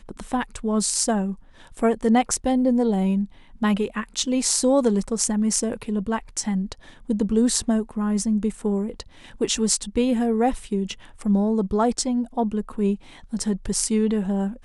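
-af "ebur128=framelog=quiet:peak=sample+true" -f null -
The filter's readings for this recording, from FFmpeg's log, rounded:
Integrated loudness:
  I:         -23.1 LUFS
  Threshold: -33.3 LUFS
Loudness range:
  LRA:         2.4 LU
  Threshold: -43.2 LUFS
  LRA low:   -24.3 LUFS
  LRA high:  -21.9 LUFS
Sample peak:
  Peak:       -2.6 dBFS
True peak:
  Peak:       -2.6 dBFS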